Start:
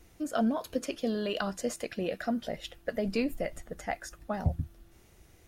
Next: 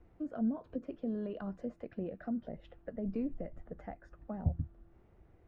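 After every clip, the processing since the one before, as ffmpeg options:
-filter_complex "[0:a]lowpass=1200,acrossover=split=340[s0][s1];[s1]acompressor=threshold=0.00794:ratio=6[s2];[s0][s2]amix=inputs=2:normalize=0,volume=0.708"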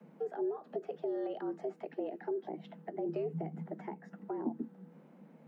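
-filter_complex "[0:a]acrossover=split=330|760[s0][s1][s2];[s0]acompressor=threshold=0.0112:ratio=4[s3];[s1]acompressor=threshold=0.00282:ratio=4[s4];[s2]acompressor=threshold=0.00141:ratio=4[s5];[s3][s4][s5]amix=inputs=3:normalize=0,afreqshift=150,volume=1.68"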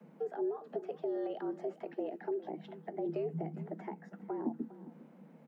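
-af "aecho=1:1:406:0.141"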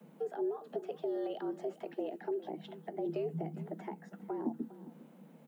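-af "aexciter=amount=2.1:drive=5.1:freq=2900"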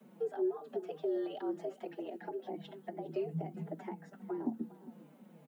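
-filter_complex "[0:a]asplit=2[s0][s1];[s1]adelay=4.7,afreqshift=-2.9[s2];[s0][s2]amix=inputs=2:normalize=1,volume=1.33"

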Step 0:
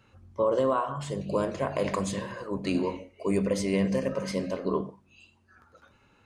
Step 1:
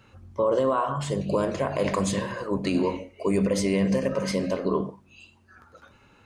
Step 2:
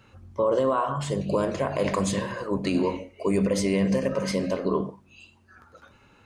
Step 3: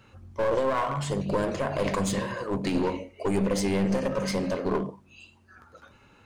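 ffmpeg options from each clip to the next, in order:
-af "alimiter=limit=0.1:level=0:latency=1:release=67,volume=1.88"
-af anull
-af "aeval=exprs='clip(val(0),-1,0.0501)':c=same"

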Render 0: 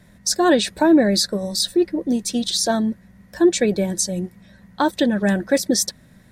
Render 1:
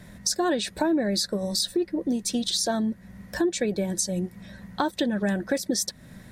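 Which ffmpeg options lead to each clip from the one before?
-af "acompressor=threshold=0.0282:ratio=3,volume=1.68"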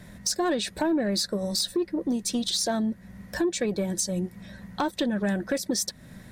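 -af "asoftclip=type=tanh:threshold=0.15"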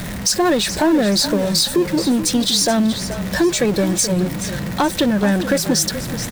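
-filter_complex "[0:a]aeval=exprs='val(0)+0.5*0.0266*sgn(val(0))':c=same,asplit=5[s0][s1][s2][s3][s4];[s1]adelay=427,afreqshift=-34,volume=0.282[s5];[s2]adelay=854,afreqshift=-68,volume=0.105[s6];[s3]adelay=1281,afreqshift=-102,volume=0.0385[s7];[s4]adelay=1708,afreqshift=-136,volume=0.0143[s8];[s0][s5][s6][s7][s8]amix=inputs=5:normalize=0,volume=2.51"

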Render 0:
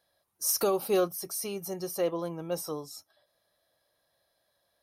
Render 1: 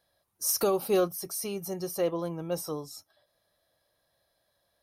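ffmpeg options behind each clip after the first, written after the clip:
-af "lowshelf=f=160:g=6.5"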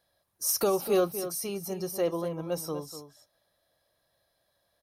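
-filter_complex "[0:a]asplit=2[s0][s1];[s1]adelay=244.9,volume=0.282,highshelf=f=4000:g=-5.51[s2];[s0][s2]amix=inputs=2:normalize=0"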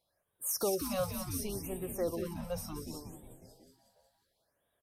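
-filter_complex "[0:a]asplit=9[s0][s1][s2][s3][s4][s5][s6][s7][s8];[s1]adelay=182,afreqshift=-140,volume=0.447[s9];[s2]adelay=364,afreqshift=-280,volume=0.272[s10];[s3]adelay=546,afreqshift=-420,volume=0.166[s11];[s4]adelay=728,afreqshift=-560,volume=0.101[s12];[s5]adelay=910,afreqshift=-700,volume=0.0617[s13];[s6]adelay=1092,afreqshift=-840,volume=0.0376[s14];[s7]adelay=1274,afreqshift=-980,volume=0.0229[s15];[s8]adelay=1456,afreqshift=-1120,volume=0.014[s16];[s0][s9][s10][s11][s12][s13][s14][s15][s16]amix=inputs=9:normalize=0,afftfilt=real='re*(1-between(b*sr/1024,300*pow(5500/300,0.5+0.5*sin(2*PI*0.69*pts/sr))/1.41,300*pow(5500/300,0.5+0.5*sin(2*PI*0.69*pts/sr))*1.41))':imag='im*(1-between(b*sr/1024,300*pow(5500/300,0.5+0.5*sin(2*PI*0.69*pts/sr))/1.41,300*pow(5500/300,0.5+0.5*sin(2*PI*0.69*pts/sr))*1.41))':win_size=1024:overlap=0.75,volume=0.501"

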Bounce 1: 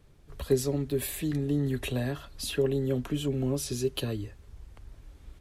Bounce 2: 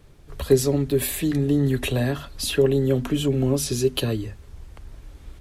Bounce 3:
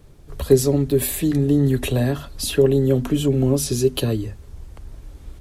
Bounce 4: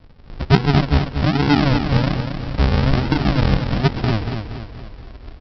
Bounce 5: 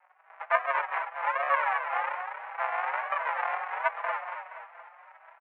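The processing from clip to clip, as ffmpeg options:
-af "bandreject=f=50:t=h:w=6,bandreject=f=100:t=h:w=6,bandreject=f=150:t=h:w=6,bandreject=f=200:t=h:w=6,bandreject=f=250:t=h:w=6,volume=2.51"
-af "equalizer=f=2200:w=0.53:g=-5,volume=1.5"
-af "aresample=11025,acrusher=samples=26:mix=1:aa=0.000001:lfo=1:lforange=15.6:lforate=1.2,aresample=44100,aecho=1:1:236|472|708|944|1180:0.447|0.205|0.0945|0.0435|0.02,volume=1.12"
-filter_complex "[0:a]highpass=f=480:t=q:w=0.5412,highpass=f=480:t=q:w=1.307,lowpass=f=2000:t=q:w=0.5176,lowpass=f=2000:t=q:w=0.7071,lowpass=f=2000:t=q:w=1.932,afreqshift=260,asplit=2[s0][s1];[s1]adelay=5.1,afreqshift=1.4[s2];[s0][s2]amix=inputs=2:normalize=1"

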